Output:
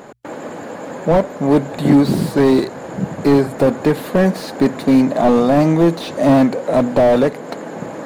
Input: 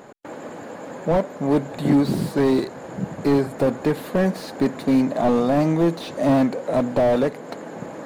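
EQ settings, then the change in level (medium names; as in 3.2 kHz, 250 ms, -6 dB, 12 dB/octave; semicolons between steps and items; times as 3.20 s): hum notches 60/120 Hz; +6.0 dB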